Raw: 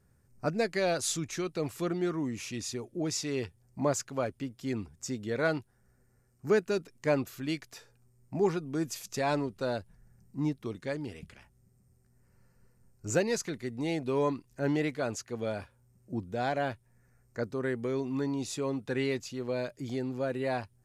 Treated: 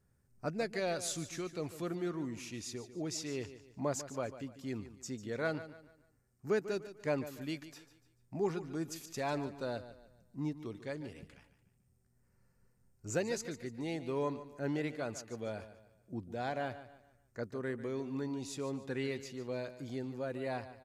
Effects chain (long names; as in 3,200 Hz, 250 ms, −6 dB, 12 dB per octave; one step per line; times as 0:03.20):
repeating echo 146 ms, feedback 37%, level −13.5 dB
level −6.5 dB